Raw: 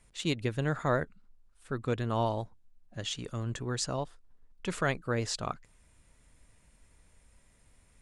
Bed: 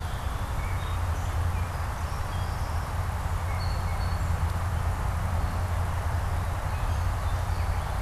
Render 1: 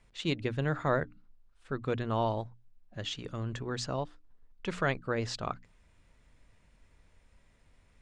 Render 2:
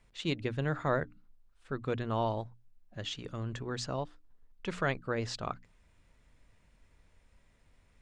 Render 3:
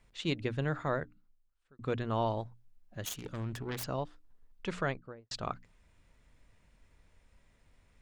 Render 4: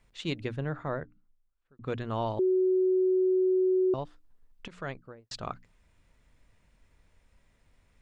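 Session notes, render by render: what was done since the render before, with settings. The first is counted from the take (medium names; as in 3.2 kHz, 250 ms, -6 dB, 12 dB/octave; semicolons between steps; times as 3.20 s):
low-pass 4.8 kHz 12 dB/octave; hum notches 60/120/180/240/300 Hz
trim -1.5 dB
0.59–1.79 s: fade out; 3.03–3.84 s: self-modulated delay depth 0.4 ms; 4.71–5.31 s: studio fade out
0.56–1.87 s: low-pass 1.6 kHz 6 dB/octave; 2.39–3.94 s: bleep 372 Hz -21.5 dBFS; 4.68–5.16 s: fade in equal-power, from -18.5 dB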